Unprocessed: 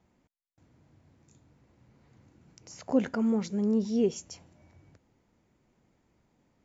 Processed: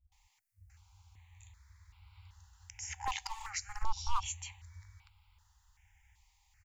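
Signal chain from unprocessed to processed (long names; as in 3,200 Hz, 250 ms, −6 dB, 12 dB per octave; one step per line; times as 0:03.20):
flat-topped bell 910 Hz −8.5 dB
multiband delay without the direct sound lows, highs 120 ms, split 180 Hz
hard clipping −25.5 dBFS, distortion −12 dB
brick-wall band-stop 100–760 Hz
0:03.82–0:04.26: spectral tilt −2 dB per octave
step-sequenced phaser 2.6 Hz 400–1,800 Hz
level +11.5 dB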